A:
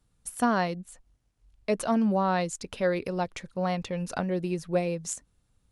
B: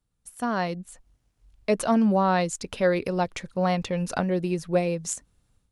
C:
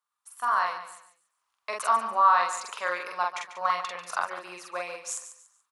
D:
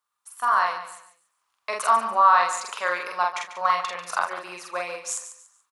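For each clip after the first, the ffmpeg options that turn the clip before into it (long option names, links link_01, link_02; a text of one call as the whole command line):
ffmpeg -i in.wav -af "dynaudnorm=framelen=370:gausssize=3:maxgain=14dB,volume=-8.5dB" out.wav
ffmpeg -i in.wav -filter_complex "[0:a]highpass=frequency=1100:width_type=q:width=4.9,asplit=2[link_01][link_02];[link_02]adelay=45,volume=-2dB[link_03];[link_01][link_03]amix=inputs=2:normalize=0,asplit=2[link_04][link_05];[link_05]aecho=0:1:143|286|429:0.266|0.0798|0.0239[link_06];[link_04][link_06]amix=inputs=2:normalize=0,volume=-5dB" out.wav
ffmpeg -i in.wav -filter_complex "[0:a]asplit=2[link_01][link_02];[link_02]adelay=35,volume=-14dB[link_03];[link_01][link_03]amix=inputs=2:normalize=0,volume=4dB" out.wav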